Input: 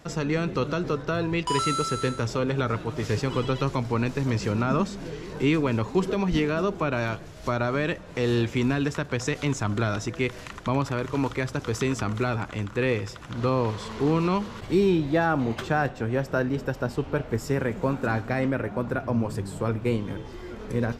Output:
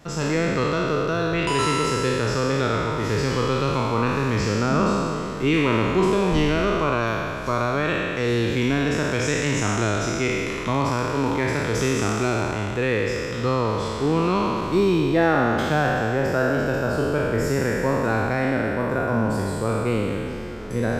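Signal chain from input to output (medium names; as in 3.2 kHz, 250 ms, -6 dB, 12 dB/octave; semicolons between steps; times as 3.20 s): spectral sustain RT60 2.54 s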